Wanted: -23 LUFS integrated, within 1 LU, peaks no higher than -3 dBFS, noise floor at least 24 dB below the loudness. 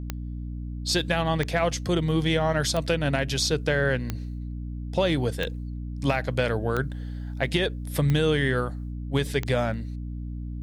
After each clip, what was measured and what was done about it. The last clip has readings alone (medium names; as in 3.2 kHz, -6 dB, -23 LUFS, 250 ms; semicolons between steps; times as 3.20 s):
clicks found 8; hum 60 Hz; highest harmonic 300 Hz; hum level -31 dBFS; loudness -26.5 LUFS; peak level -10.5 dBFS; loudness target -23.0 LUFS
-> de-click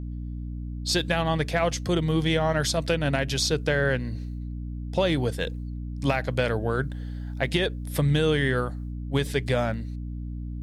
clicks found 0; hum 60 Hz; highest harmonic 300 Hz; hum level -31 dBFS
-> hum notches 60/120/180/240/300 Hz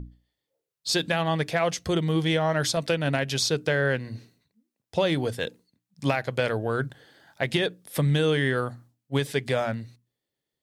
hum not found; loudness -26.5 LUFS; peak level -10.5 dBFS; loudness target -23.0 LUFS
-> trim +3.5 dB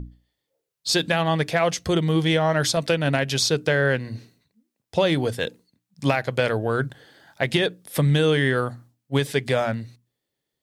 loudness -23.0 LUFS; peak level -7.0 dBFS; noise floor -82 dBFS